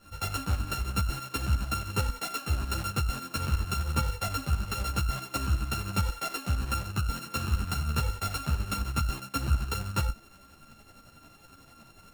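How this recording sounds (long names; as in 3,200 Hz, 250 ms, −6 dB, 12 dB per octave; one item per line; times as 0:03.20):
a buzz of ramps at a fixed pitch in blocks of 32 samples
tremolo saw up 11 Hz, depth 65%
a shimmering, thickened sound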